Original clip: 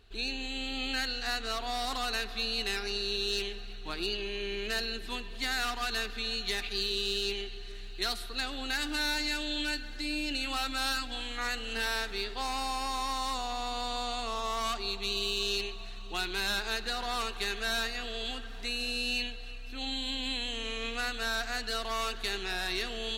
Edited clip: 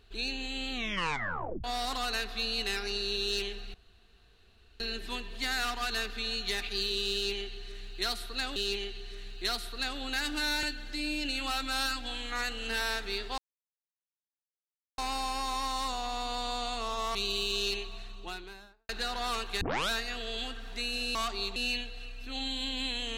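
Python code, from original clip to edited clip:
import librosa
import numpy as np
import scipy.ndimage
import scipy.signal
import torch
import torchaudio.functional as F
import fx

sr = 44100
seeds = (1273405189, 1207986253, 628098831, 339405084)

y = fx.studio_fade_out(x, sr, start_s=15.76, length_s=1.0)
y = fx.edit(y, sr, fx.tape_stop(start_s=0.71, length_s=0.93),
    fx.room_tone_fill(start_s=3.74, length_s=1.06),
    fx.repeat(start_s=7.13, length_s=1.43, count=2),
    fx.cut(start_s=9.2, length_s=0.49),
    fx.insert_silence(at_s=12.44, length_s=1.6),
    fx.move(start_s=14.61, length_s=0.41, to_s=19.02),
    fx.tape_start(start_s=17.48, length_s=0.29), tone=tone)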